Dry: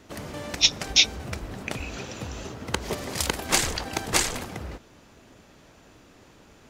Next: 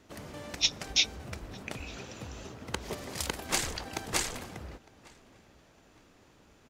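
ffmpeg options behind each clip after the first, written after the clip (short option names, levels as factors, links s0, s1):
-filter_complex "[0:a]asplit=2[s0][s1];[s1]adelay=907,lowpass=f=3400:p=1,volume=0.0708,asplit=2[s2][s3];[s3]adelay=907,lowpass=f=3400:p=1,volume=0.35[s4];[s0][s2][s4]amix=inputs=3:normalize=0,volume=0.422"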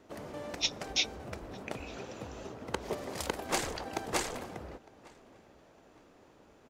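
-af "equalizer=f=550:t=o:w=2.8:g=9.5,volume=0.531"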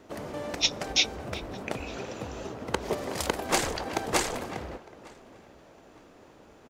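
-filter_complex "[0:a]asplit=2[s0][s1];[s1]adelay=370,highpass=300,lowpass=3400,asoftclip=type=hard:threshold=0.0668,volume=0.2[s2];[s0][s2]amix=inputs=2:normalize=0,volume=2"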